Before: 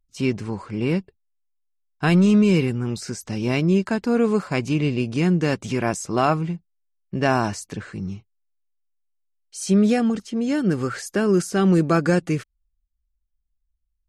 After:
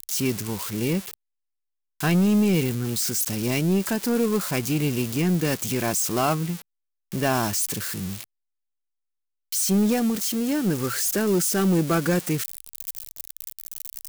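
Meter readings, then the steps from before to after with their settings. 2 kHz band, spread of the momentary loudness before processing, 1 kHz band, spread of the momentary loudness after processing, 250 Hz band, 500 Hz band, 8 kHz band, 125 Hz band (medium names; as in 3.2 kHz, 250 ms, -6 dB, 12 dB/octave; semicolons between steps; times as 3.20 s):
-2.5 dB, 14 LU, -3.5 dB, 14 LU, -3.0 dB, -3.5 dB, +9.0 dB, -3.0 dB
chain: zero-crossing glitches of -17.5 dBFS; waveshaping leveller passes 1; trim -5.5 dB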